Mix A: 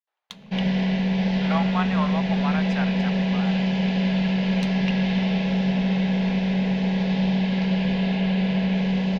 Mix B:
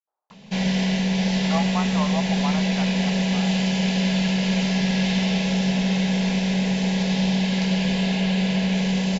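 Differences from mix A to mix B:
speech: add low-pass filter 1,100 Hz 24 dB per octave
master: remove high-frequency loss of the air 260 metres

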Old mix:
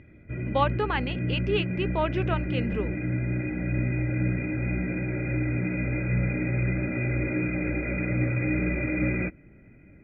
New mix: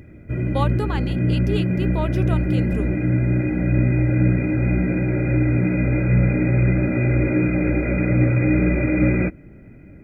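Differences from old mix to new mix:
background +9.0 dB
master: remove low-pass with resonance 2,500 Hz, resonance Q 2

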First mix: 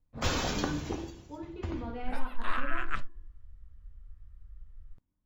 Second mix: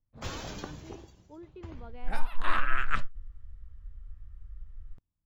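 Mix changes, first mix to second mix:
first sound −7.5 dB
second sound +4.5 dB
reverb: off

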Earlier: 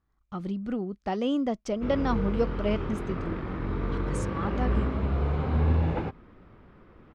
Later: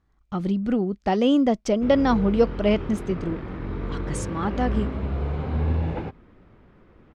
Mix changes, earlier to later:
speech +8.0 dB
master: add parametric band 1,200 Hz −3.5 dB 0.57 octaves

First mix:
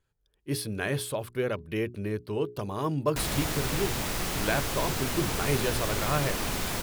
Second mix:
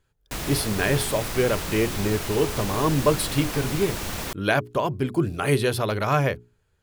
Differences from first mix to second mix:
speech +7.0 dB
background: entry −2.85 s

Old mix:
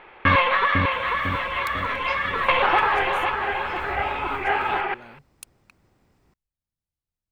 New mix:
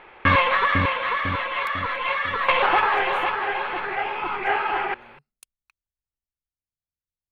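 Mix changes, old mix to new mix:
speech −8.0 dB
second sound: muted

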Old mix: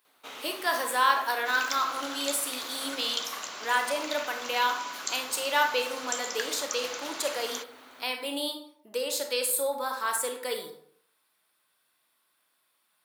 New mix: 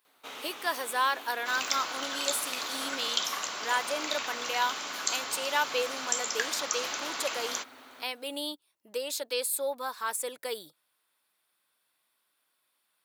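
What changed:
speech: send off
second sound +3.5 dB

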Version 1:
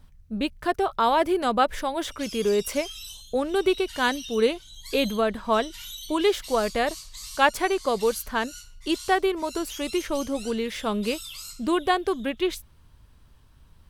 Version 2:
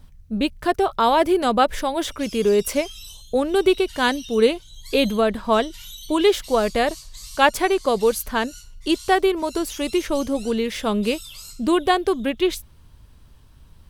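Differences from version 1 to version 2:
speech +5.5 dB
master: add parametric band 1,400 Hz −3 dB 1.8 octaves

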